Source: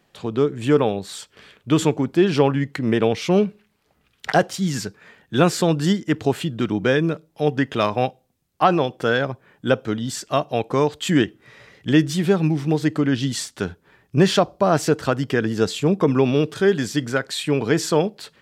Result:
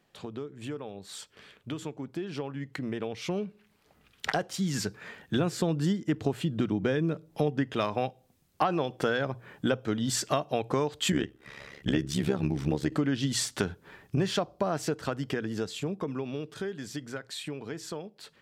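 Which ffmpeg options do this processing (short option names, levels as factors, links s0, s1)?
-filter_complex "[0:a]asettb=1/sr,asplit=3[s0][s1][s2];[s0]atrim=end=5.364[s3];[s1]atrim=start=5.36:end=7.7,asetpts=PTS-STARTPTS,afade=t=in:d=0.004:c=qsin,afade=t=out:st=2.336:d=0.004:c=qsin,lowshelf=f=500:g=6[s4];[s2]atrim=start=7.696[s5];[s3][s4]acrossfade=d=0.004:c1=hsin:c2=qsin[s6];[s6][s5]acrossfade=d=0.004:c1=qsin:c2=hsin,asettb=1/sr,asplit=3[s7][s8][s9];[s7]atrim=end=11.124[s10];[s8]atrim=start=11.12:end=12.92,asetpts=PTS-STARTPTS,afade=t=in:d=0.004:c=qsin,afade=t=out:st=1.796:d=0.004:c=qsin,tremolo=f=70:d=0.857[s11];[s9]atrim=start=12.916[s12];[s10][s11]acrossfade=d=0.004:c1=hsin:c2=qsin[s13];[s13][s12]acrossfade=d=0.004:c1=qsin:c2=hsin,acompressor=threshold=0.0355:ratio=6,bandreject=f=60:t=h:w=6,bandreject=f=120:t=h:w=6,dynaudnorm=f=230:g=31:m=3.76,volume=0.473"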